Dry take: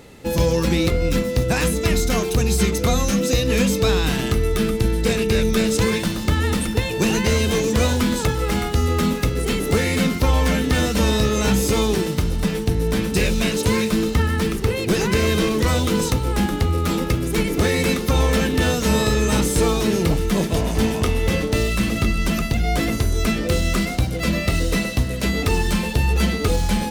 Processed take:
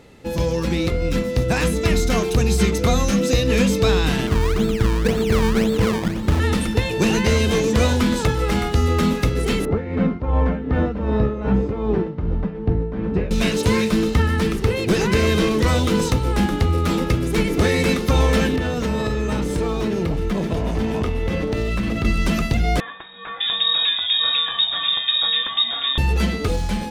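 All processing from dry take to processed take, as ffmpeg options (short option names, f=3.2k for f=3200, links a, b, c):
-filter_complex "[0:a]asettb=1/sr,asplit=3[a][b][c];[a]atrim=end=4.274[d];[b]atrim=start=4.27:end=6.4,asetpts=PTS-STARTPTS,afade=t=in:d=0.004:c=qsin,afade=t=out:st=2.126:d=0.004:c=qsin,equalizer=f=6.5k:w=0.37:g=-12.5,acrusher=samples=22:mix=1:aa=0.000001:lfo=1:lforange=22:lforate=1.9[e];[c]atrim=start=6.396[f];[d][e]acrossfade=d=0.004:c1=hsin:c2=qsin[g];[g][f]acrossfade=d=0.004:c1=qsin:c2=hsin,asettb=1/sr,asplit=3[h][i][j];[h]atrim=end=9.654[k];[i]atrim=start=9.65:end=13.31,asetpts=PTS-STARTPTS,afade=t=in:d=0.004:c=qsin,afade=t=out:st=3.656:d=0.004:c=qsin,lowpass=1.2k,tremolo=f=2.6:d=0.64[l];[j]atrim=start=13.306[m];[k][l]acrossfade=d=0.004:c1=hsin:c2=qsin[n];[n][m]acrossfade=d=0.004:c1=qsin:c2=hsin,asettb=1/sr,asplit=3[o][p][q];[o]atrim=end=18.564[r];[p]atrim=start=18.56:end=22.05,asetpts=PTS-STARTPTS,afade=t=in:d=0.004:c=qsin,afade=t=out:st=3.486:d=0.004:c=qsin,equalizer=f=10k:w=0.31:g=-8.5,acompressor=threshold=-19dB:ratio=6:attack=3.2:release=140:knee=1:detection=peak[s];[q]atrim=start=22.046[t];[r][s]acrossfade=d=0.004:c1=hsin:c2=qsin[u];[u][t]acrossfade=d=0.004:c1=qsin:c2=hsin,asettb=1/sr,asplit=3[v][w][x];[v]atrim=end=22.804[y];[w]atrim=start=22.8:end=25.98,asetpts=PTS-STARTPTS,afade=t=in:d=0.004:c=qsin,afade=t=out:st=3.176:d=0.004:c=qsin,lowpass=f=3.2k:t=q:w=0.5098,lowpass=f=3.2k:t=q:w=0.6013,lowpass=f=3.2k:t=q:w=0.9,lowpass=f=3.2k:t=q:w=2.563,afreqshift=-3800,acrossover=split=1800[z][aa];[aa]adelay=600[ab];[z][ab]amix=inputs=2:normalize=0,atrim=end_sample=140238[ac];[x]atrim=start=25.976[ad];[y][ac]acrossfade=d=0.004:c1=hsin:c2=qsin[ae];[ae][ad]acrossfade=d=0.004:c1=qsin:c2=hsin,highshelf=f=8.1k:g=-9.5,dynaudnorm=f=500:g=5:m=5dB,volume=-3dB"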